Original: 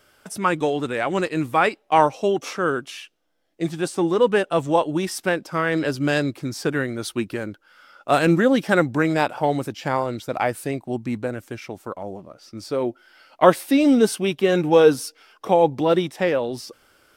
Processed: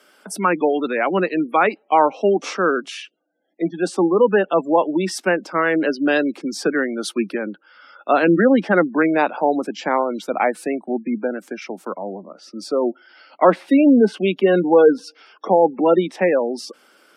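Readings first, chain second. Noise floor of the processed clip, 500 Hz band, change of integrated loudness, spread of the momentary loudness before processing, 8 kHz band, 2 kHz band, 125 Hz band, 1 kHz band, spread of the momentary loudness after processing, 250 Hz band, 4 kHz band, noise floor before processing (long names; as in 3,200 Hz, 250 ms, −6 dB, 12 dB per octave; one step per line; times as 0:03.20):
−58 dBFS, +3.0 dB, +2.5 dB, 17 LU, −1.0 dB, +2.5 dB, −4.0 dB, +2.5 dB, 16 LU, +3.5 dB, −1.5 dB, −62 dBFS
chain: gate on every frequency bin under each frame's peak −25 dB strong
Butterworth high-pass 180 Hz 72 dB per octave
treble cut that deepens with the level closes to 2,600 Hz, closed at −14.5 dBFS
in parallel at +2 dB: brickwall limiter −11 dBFS, peak gain reduction 10 dB
on the sum: level −3 dB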